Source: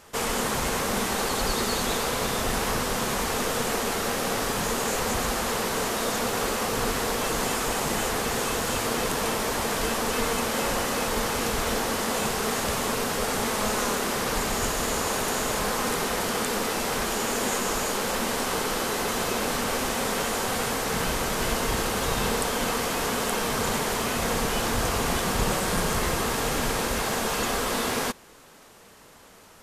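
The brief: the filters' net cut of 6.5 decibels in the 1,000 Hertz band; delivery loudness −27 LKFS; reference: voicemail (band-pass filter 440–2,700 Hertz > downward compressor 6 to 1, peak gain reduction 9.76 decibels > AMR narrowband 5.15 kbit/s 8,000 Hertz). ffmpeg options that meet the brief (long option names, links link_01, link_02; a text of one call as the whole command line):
ffmpeg -i in.wav -af "highpass=440,lowpass=2700,equalizer=frequency=1000:width_type=o:gain=-8,acompressor=threshold=-38dB:ratio=6,volume=18.5dB" -ar 8000 -c:a libopencore_amrnb -b:a 5150 out.amr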